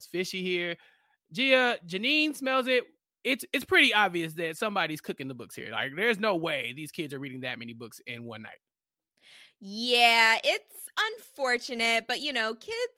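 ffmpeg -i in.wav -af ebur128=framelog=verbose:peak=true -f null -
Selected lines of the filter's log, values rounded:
Integrated loudness:
  I:         -26.7 LUFS
  Threshold: -37.7 LUFS
Loudness range:
  LRA:         8.6 LU
  Threshold: -47.7 LUFS
  LRA low:   -34.0 LUFS
  LRA high:  -25.4 LUFS
True peak:
  Peak:       -7.4 dBFS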